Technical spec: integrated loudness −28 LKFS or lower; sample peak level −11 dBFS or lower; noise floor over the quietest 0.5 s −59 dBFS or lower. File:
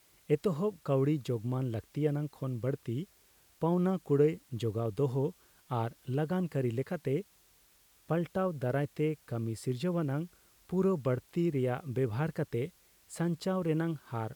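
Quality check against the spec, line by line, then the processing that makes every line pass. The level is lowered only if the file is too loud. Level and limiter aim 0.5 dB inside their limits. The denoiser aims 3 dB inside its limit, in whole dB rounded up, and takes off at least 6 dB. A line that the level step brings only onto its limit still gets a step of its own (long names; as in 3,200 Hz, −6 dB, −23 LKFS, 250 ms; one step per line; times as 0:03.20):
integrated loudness −33.0 LKFS: in spec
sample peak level −16.0 dBFS: in spec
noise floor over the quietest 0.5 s −65 dBFS: in spec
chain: no processing needed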